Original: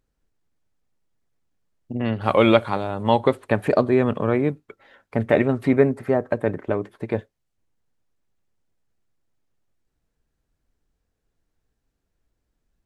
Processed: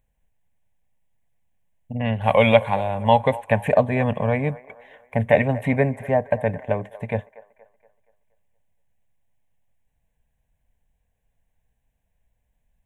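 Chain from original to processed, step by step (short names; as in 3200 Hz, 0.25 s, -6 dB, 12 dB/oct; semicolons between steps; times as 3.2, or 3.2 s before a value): fixed phaser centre 1300 Hz, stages 6; on a send: band-limited delay 0.236 s, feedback 44%, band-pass 970 Hz, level -17 dB; on the sum: gain +4.5 dB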